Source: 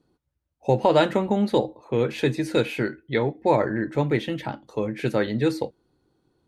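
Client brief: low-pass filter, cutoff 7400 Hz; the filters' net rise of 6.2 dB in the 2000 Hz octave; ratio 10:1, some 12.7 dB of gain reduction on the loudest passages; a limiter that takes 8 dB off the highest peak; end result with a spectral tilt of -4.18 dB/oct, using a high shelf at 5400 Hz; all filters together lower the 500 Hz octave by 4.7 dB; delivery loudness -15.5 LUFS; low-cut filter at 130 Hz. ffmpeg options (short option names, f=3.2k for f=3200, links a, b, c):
-af "highpass=130,lowpass=7.4k,equalizer=f=500:t=o:g=-6,equalizer=f=2k:t=o:g=8.5,highshelf=f=5.4k:g=-3.5,acompressor=threshold=-28dB:ratio=10,volume=20dB,alimiter=limit=-2.5dB:level=0:latency=1"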